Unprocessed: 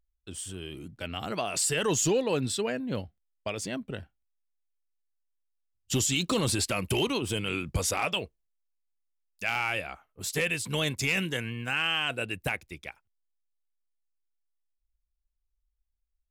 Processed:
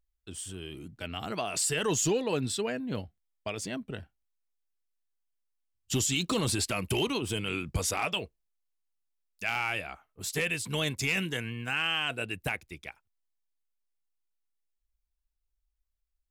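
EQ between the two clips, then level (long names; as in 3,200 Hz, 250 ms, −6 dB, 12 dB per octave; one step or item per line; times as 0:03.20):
notch filter 540 Hz, Q 12
−1.5 dB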